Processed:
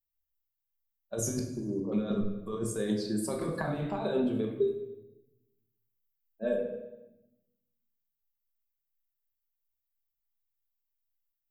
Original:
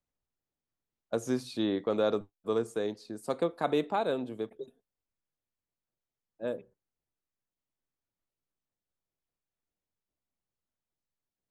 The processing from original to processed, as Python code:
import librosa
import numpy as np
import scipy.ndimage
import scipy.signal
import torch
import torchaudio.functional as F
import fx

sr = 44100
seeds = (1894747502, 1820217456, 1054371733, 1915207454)

y = fx.bin_expand(x, sr, power=1.5)
y = fx.over_compress(y, sr, threshold_db=-40.0, ratio=-1.0)
y = fx.steep_lowpass(y, sr, hz=1100.0, slope=96, at=(1.39, 1.92))
y = fx.comb(y, sr, ms=4.5, depth=0.76, at=(4.52, 6.58))
y = fx.echo_feedback(y, sr, ms=101, feedback_pct=53, wet_db=-17)
y = fx.room_shoebox(y, sr, seeds[0], volume_m3=290.0, walls='mixed', distance_m=1.1)
y = fx.band_squash(y, sr, depth_pct=100, at=(3.41, 3.99))
y = y * 10.0 ** (5.5 / 20.0)